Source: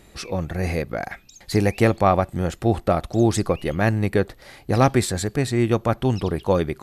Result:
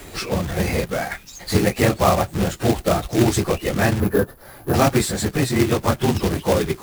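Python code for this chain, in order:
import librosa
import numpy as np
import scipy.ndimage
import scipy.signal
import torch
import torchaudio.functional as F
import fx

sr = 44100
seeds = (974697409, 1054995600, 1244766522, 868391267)

y = fx.phase_scramble(x, sr, seeds[0], window_ms=50)
y = fx.high_shelf(y, sr, hz=3900.0, db=3.0)
y = fx.quant_companded(y, sr, bits=4)
y = fx.spec_box(y, sr, start_s=4.0, length_s=0.74, low_hz=1800.0, high_hz=9800.0, gain_db=-13)
y = fx.band_squash(y, sr, depth_pct=40)
y = F.gain(torch.from_numpy(y), 1.0).numpy()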